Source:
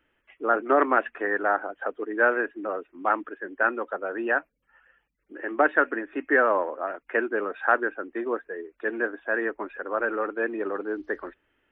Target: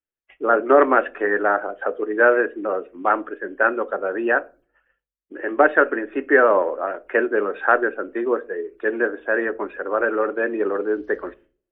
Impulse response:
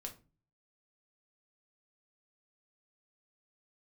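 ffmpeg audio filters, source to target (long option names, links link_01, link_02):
-filter_complex "[0:a]agate=range=-33dB:threshold=-51dB:ratio=3:detection=peak,asplit=2[link_01][link_02];[link_02]equalizer=frequency=125:width_type=o:width=1:gain=4,equalizer=frequency=250:width_type=o:width=1:gain=-9,equalizer=frequency=500:width_type=o:width=1:gain=4,equalizer=frequency=1000:width_type=o:width=1:gain=-9,equalizer=frequency=2000:width_type=o:width=1:gain=-9[link_03];[1:a]atrim=start_sample=2205,lowpass=2800[link_04];[link_03][link_04]afir=irnorm=-1:irlink=0,volume=1.5dB[link_05];[link_01][link_05]amix=inputs=2:normalize=0,volume=3dB"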